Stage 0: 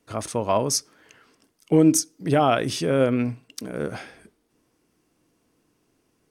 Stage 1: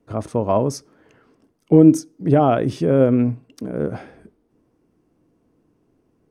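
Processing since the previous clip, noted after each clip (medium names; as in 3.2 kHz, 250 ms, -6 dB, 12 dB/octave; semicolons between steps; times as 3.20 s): tilt shelf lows +9.5 dB, about 1.4 kHz; trim -2.5 dB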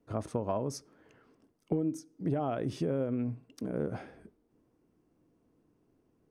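compression 12:1, threshold -20 dBFS, peak gain reduction 14.5 dB; trim -7.5 dB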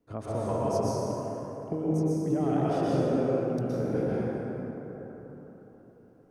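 plate-style reverb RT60 4.2 s, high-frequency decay 0.4×, pre-delay 105 ms, DRR -8 dB; trim -2.5 dB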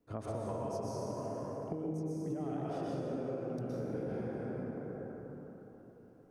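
compression, threshold -33 dBFS, peak gain reduction 11.5 dB; trim -2 dB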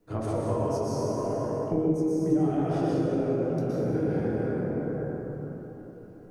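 simulated room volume 41 m³, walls mixed, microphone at 0.64 m; trim +6.5 dB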